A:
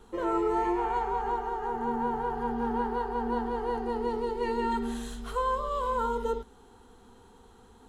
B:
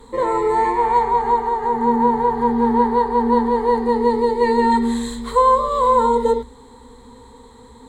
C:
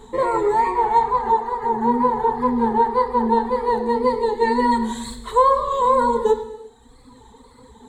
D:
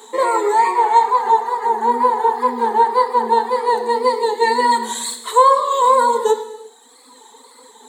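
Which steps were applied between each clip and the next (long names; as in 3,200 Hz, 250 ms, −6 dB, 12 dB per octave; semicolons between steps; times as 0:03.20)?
EQ curve with evenly spaced ripples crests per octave 1, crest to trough 14 dB; level +8.5 dB
reverb reduction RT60 1.5 s; tape wow and flutter 86 cents; reverb whose tail is shaped and stops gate 420 ms falling, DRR 8 dB
Bessel high-pass filter 460 Hz, order 8; high-shelf EQ 4,400 Hz +11 dB; level +4.5 dB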